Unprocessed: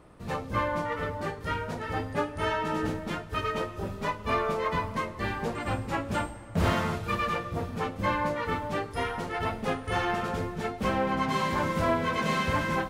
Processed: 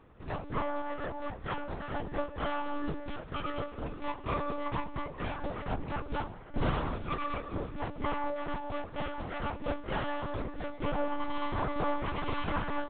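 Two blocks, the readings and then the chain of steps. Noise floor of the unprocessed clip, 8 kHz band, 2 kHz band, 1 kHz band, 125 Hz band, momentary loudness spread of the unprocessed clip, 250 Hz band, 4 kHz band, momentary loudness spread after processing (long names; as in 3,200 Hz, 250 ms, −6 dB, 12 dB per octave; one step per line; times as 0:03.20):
−42 dBFS, below −35 dB, −8.5 dB, −6.0 dB, −6.5 dB, 6 LU, −5.5 dB, −7.5 dB, 6 LU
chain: dynamic equaliser 2,000 Hz, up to −5 dB, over −43 dBFS, Q 1.6
double-tracking delay 19 ms −11.5 dB
one-pitch LPC vocoder at 8 kHz 290 Hz
level −4 dB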